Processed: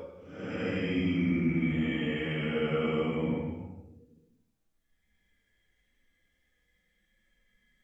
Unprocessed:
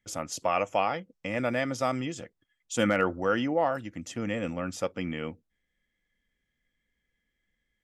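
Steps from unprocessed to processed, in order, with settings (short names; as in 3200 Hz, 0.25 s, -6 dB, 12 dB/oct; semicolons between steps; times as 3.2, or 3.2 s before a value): harmonic-percussive split harmonic +4 dB; limiter -23 dBFS, peak gain reduction 12.5 dB; Paulstretch 8.3×, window 0.10 s, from 4.9; gain +4 dB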